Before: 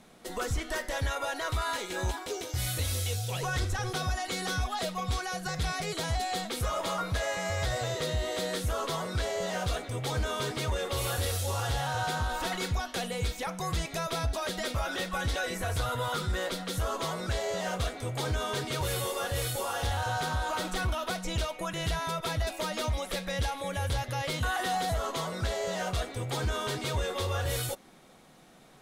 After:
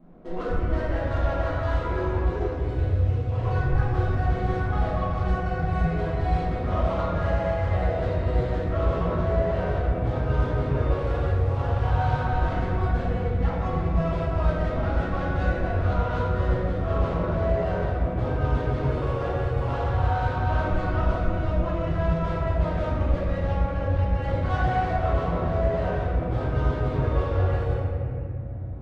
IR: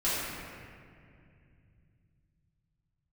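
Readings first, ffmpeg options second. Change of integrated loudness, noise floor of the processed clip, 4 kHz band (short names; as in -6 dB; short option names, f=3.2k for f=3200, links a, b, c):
+6.0 dB, -29 dBFS, -12.0 dB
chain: -filter_complex "[0:a]lowpass=11k,areverse,acompressor=mode=upward:threshold=-50dB:ratio=2.5,areverse,alimiter=level_in=4.5dB:limit=-24dB:level=0:latency=1:release=135,volume=-4.5dB,adynamicsmooth=sensitivity=2.5:basefreq=590[a];[1:a]atrim=start_sample=2205[b];[a][b]afir=irnorm=-1:irlink=0,volume=1dB"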